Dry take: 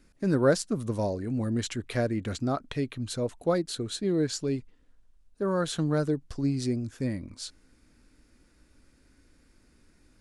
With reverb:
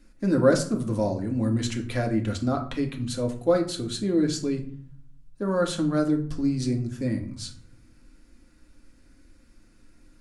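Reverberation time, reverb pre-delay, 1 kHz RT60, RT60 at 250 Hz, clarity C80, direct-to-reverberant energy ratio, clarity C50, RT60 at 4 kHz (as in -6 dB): 0.55 s, 3 ms, 0.55 s, 1.0 s, 15.0 dB, 2.0 dB, 11.5 dB, 0.35 s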